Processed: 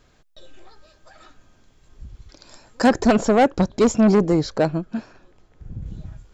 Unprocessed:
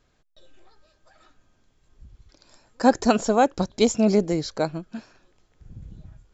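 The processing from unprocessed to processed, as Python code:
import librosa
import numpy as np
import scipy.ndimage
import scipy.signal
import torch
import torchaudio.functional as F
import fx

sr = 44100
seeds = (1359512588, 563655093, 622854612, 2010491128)

y = fx.high_shelf(x, sr, hz=2400.0, db=-9.5, at=(2.87, 5.86))
y = 10.0 ** (-18.5 / 20.0) * np.tanh(y / 10.0 ** (-18.5 / 20.0))
y = F.gain(torch.from_numpy(y), 8.5).numpy()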